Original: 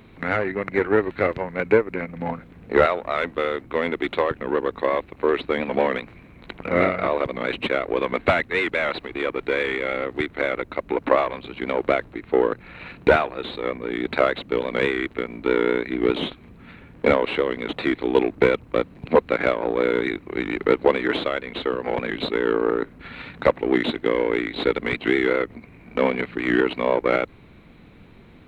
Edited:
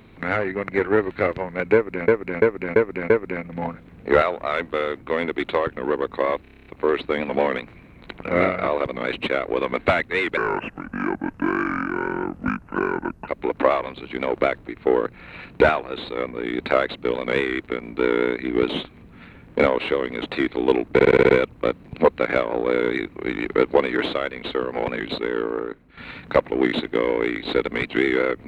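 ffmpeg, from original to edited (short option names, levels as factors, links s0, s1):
-filter_complex "[0:a]asplit=22[s0][s1][s2][s3][s4][s5][s6][s7][s8][s9][s10][s11][s12][s13][s14][s15][s16][s17][s18][s19][s20][s21];[s0]atrim=end=2.082[s22];[s1]atrim=start=1.738:end=2.082[s23];[s2]atrim=start=1.738:end=2.082[s24];[s3]atrim=start=1.738:end=2.082[s25];[s4]atrim=start=1.738:end=5.092[s26];[s5]atrim=start=5.058:end=5.092[s27];[s6]atrim=start=5.058:end=5.092[s28];[s7]atrim=start=5.058:end=5.092[s29];[s8]atrim=start=5.058:end=5.092[s30];[s9]atrim=start=5.058:end=5.092[s31];[s10]atrim=start=5.058:end=5.092[s32];[s11]atrim=start=5.058:end=5.092[s33];[s12]atrim=start=5.058:end=8.774[s34];[s13]atrim=start=8.77:end=10.75,asetpts=PTS-STARTPTS,asetrate=29988,aresample=44100[s35];[s14]atrim=start=10.746:end=18.462[s36];[s15]atrim=start=18.398:end=18.462[s37];[s16]atrim=start=18.398:end=18.462[s38];[s17]atrim=start=18.398:end=18.462[s39];[s18]atrim=start=18.398:end=18.462[s40];[s19]atrim=start=18.398:end=18.462[s41];[s20]atrim=start=18.398:end=23.08,asetpts=PTS-STARTPTS,afade=t=out:st=3.662:d=1.02:silence=0.237137[s42];[s21]atrim=start=23.08,asetpts=PTS-STARTPTS,afade=t=in:d=0.004:c=hsin:silence=0.237137[s43];[s22][s23]acrossfade=d=0.004:c1=hsin:c2=hsin[s44];[s44][s24]acrossfade=d=0.004:c1=hsin:c2=hsin[s45];[s45][s25]acrossfade=d=0.004:c1=hsin:c2=hsin[s46];[s46][s26]acrossfade=d=0.004:c1=hsin:c2=hsin[s47];[s47][s27]acrossfade=d=0.004:c1=hsin:c2=hsin[s48];[s48][s28]acrossfade=d=0.004:c1=hsin:c2=hsin[s49];[s49][s29]acrossfade=d=0.004:c1=hsin:c2=hsin[s50];[s50][s30]acrossfade=d=0.004:c1=hsin:c2=hsin[s51];[s51][s31]acrossfade=d=0.004:c1=hsin:c2=hsin[s52];[s52][s32]acrossfade=d=0.004:c1=hsin:c2=hsin[s53];[s53][s33]acrossfade=d=0.004:c1=hsin:c2=hsin[s54];[s54][s34]acrossfade=d=0.004:c1=hsin:c2=hsin[s55];[s55][s35]acrossfade=d=0.004:c1=hsin:c2=hsin[s56];[s56][s36]acrossfade=d=0.004:c1=hsin:c2=hsin[s57];[s57][s37]acrossfade=d=0.004:c1=hsin:c2=hsin[s58];[s58][s38]acrossfade=d=0.004:c1=hsin:c2=hsin[s59];[s59][s39]acrossfade=d=0.004:c1=hsin:c2=hsin[s60];[s60][s40]acrossfade=d=0.004:c1=hsin:c2=hsin[s61];[s61][s41]acrossfade=d=0.004:c1=hsin:c2=hsin[s62];[s42][s43]concat=n=2:v=0:a=1[s63];[s62][s63]acrossfade=d=0.004:c1=hsin:c2=hsin"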